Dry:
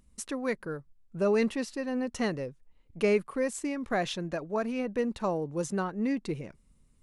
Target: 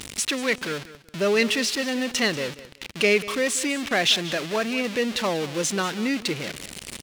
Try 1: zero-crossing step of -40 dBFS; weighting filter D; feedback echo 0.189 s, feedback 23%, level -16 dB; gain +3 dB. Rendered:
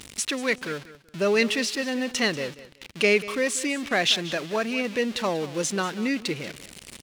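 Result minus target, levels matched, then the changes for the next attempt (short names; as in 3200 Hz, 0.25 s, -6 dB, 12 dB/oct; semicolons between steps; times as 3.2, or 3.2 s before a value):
zero-crossing step: distortion -6 dB
change: zero-crossing step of -33.5 dBFS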